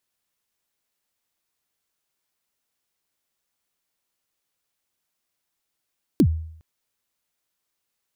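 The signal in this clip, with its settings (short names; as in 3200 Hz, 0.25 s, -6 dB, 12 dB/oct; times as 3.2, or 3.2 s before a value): kick drum length 0.41 s, from 360 Hz, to 80 Hz, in 70 ms, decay 0.65 s, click on, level -10 dB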